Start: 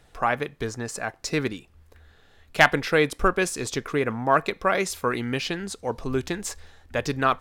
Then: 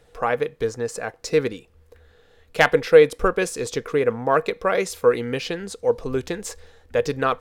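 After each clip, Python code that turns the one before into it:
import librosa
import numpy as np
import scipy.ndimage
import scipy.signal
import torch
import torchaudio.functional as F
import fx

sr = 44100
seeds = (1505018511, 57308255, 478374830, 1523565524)

y = fx.peak_eq(x, sr, hz=480.0, db=15.0, octaves=0.25)
y = y * librosa.db_to_amplitude(-1.0)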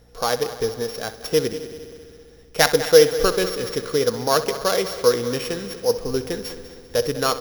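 y = np.r_[np.sort(x[:len(x) // 8 * 8].reshape(-1, 8), axis=1).ravel(), x[len(x) // 8 * 8:]]
y = fx.echo_heads(y, sr, ms=65, heads='first and third', feedback_pct=67, wet_db=-15.0)
y = fx.add_hum(y, sr, base_hz=60, snr_db=33)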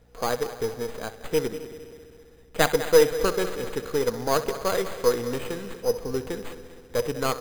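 y = np.repeat(x[::8], 8)[:len(x)]
y = y * librosa.db_to_amplitude(-4.5)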